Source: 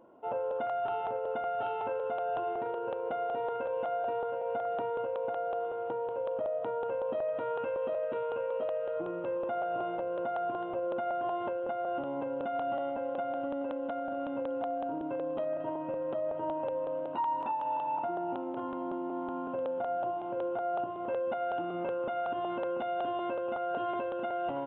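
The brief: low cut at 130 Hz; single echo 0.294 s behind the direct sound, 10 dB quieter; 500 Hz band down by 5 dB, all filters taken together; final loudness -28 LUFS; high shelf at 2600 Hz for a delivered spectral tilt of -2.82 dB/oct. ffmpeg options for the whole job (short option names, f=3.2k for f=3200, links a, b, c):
-af "highpass=130,equalizer=f=500:t=o:g=-7,highshelf=f=2.6k:g=9,aecho=1:1:294:0.316,volume=9dB"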